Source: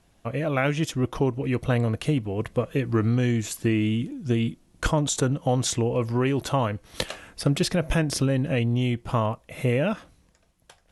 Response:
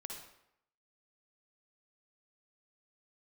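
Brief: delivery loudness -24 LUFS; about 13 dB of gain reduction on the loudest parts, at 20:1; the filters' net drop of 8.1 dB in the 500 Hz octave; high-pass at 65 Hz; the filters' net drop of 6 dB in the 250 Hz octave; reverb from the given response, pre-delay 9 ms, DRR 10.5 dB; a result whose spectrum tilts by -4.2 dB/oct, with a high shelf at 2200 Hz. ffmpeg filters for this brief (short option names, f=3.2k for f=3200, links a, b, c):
-filter_complex "[0:a]highpass=65,equalizer=f=250:t=o:g=-5.5,equalizer=f=500:t=o:g=-9,highshelf=f=2.2k:g=6,acompressor=threshold=-32dB:ratio=20,asplit=2[a][b];[1:a]atrim=start_sample=2205,adelay=9[c];[b][c]afir=irnorm=-1:irlink=0,volume=-7.5dB[d];[a][d]amix=inputs=2:normalize=0,volume=12dB"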